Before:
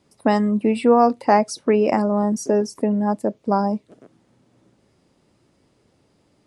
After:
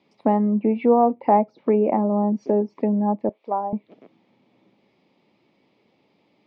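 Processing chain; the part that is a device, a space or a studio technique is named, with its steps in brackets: kitchen radio (speaker cabinet 200–4500 Hz, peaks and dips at 200 Hz +4 dB, 860 Hz +4 dB, 1500 Hz -9 dB, 2300 Hz +9 dB, 3400 Hz +3 dB); treble ducked by the level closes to 910 Hz, closed at -15.5 dBFS; 3.29–3.73 HPF 570 Hz 12 dB/oct; gain -1.5 dB

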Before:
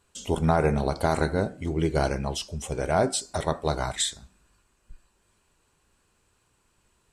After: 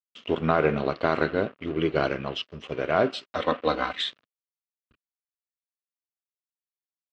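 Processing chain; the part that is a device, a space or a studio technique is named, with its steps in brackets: 3.36–3.98 comb 3.9 ms, depth 93%; blown loudspeaker (crossover distortion -41 dBFS; speaker cabinet 170–3700 Hz, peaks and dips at 180 Hz -6 dB, 850 Hz -10 dB, 1200 Hz +5 dB, 2800 Hz +7 dB); gain +3 dB

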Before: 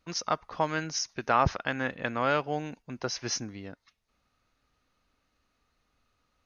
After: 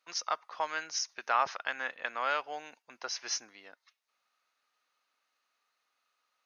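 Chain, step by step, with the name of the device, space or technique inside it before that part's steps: HPF 1100 Hz 6 dB/oct; filter by subtraction (in parallel: LPF 820 Hz 12 dB/oct + phase invert); on the sum: gain -2 dB

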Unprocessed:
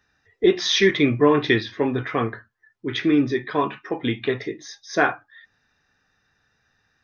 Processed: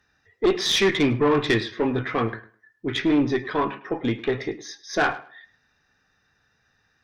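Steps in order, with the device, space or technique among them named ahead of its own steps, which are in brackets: 3.58–4.34 bell 5400 Hz -6 dB 2 oct; rockabilly slapback (tube stage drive 15 dB, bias 0.35; tape echo 0.104 s, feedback 23%, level -15.5 dB, low-pass 3800 Hz); gain +1.5 dB

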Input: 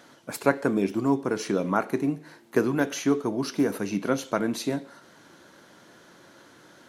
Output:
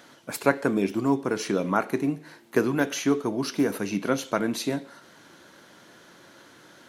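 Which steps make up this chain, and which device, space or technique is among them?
presence and air boost (bell 2800 Hz +3 dB 1.7 oct; high shelf 12000 Hz +5 dB)

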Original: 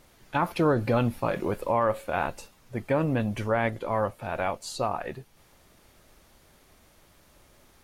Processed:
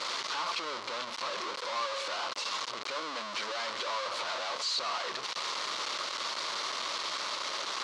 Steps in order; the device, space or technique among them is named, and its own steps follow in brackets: 2.94–4.5 HPF 240 Hz -> 63 Hz 24 dB/oct; home computer beeper (infinite clipping; speaker cabinet 760–5600 Hz, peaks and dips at 760 Hz -8 dB, 1100 Hz +6 dB, 1700 Hz -6 dB, 2500 Hz -4 dB, 4200 Hz +4 dB)

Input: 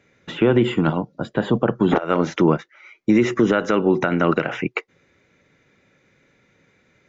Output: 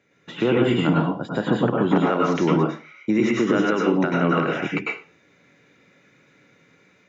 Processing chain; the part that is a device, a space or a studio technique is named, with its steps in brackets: far laptop microphone (reverb RT60 0.35 s, pre-delay 95 ms, DRR -2 dB; HPF 110 Hz; AGC gain up to 5 dB); gain -5.5 dB

